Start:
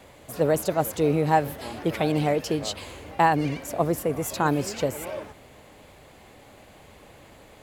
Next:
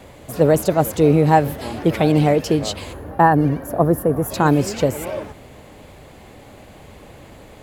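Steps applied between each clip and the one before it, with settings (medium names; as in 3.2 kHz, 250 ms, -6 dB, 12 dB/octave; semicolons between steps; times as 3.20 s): time-frequency box 2.93–4.31 s, 1.9–9.6 kHz -13 dB; bass shelf 470 Hz +6 dB; trim +4.5 dB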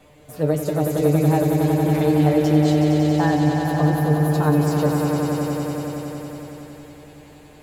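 feedback comb 150 Hz, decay 0.17 s, harmonics all, mix 90%; on a send: echo with a slow build-up 92 ms, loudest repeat 5, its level -7 dB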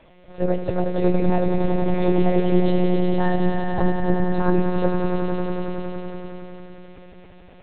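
monotone LPC vocoder at 8 kHz 180 Hz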